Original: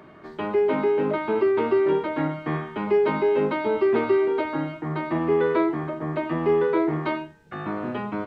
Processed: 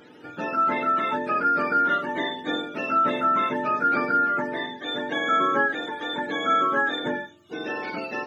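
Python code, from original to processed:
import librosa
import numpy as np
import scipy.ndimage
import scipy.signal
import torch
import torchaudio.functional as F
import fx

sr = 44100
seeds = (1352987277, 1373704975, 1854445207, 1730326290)

y = fx.octave_mirror(x, sr, pivot_hz=740.0)
y = fx.small_body(y, sr, hz=(300.0, 2900.0), ring_ms=25, db=7)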